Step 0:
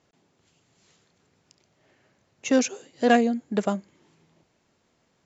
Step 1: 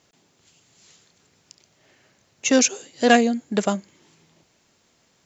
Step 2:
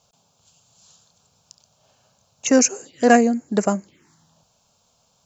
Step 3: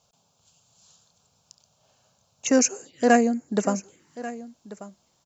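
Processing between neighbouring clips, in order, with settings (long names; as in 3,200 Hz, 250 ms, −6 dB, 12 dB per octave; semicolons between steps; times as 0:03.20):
high-shelf EQ 2,600 Hz +10 dB; level +2.5 dB
phaser swept by the level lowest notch 320 Hz, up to 3,500 Hz, full sweep at −22 dBFS; level +2.5 dB
single-tap delay 1,138 ms −16.5 dB; level −4 dB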